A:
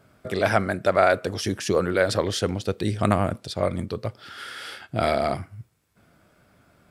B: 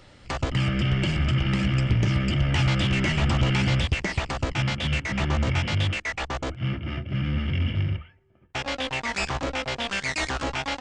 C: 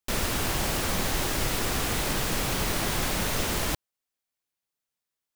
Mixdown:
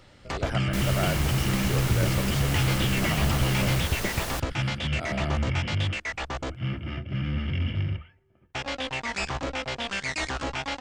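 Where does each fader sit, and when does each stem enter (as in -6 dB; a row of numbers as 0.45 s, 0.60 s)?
-12.5 dB, -2.5 dB, -4.5 dB; 0.00 s, 0.00 s, 0.65 s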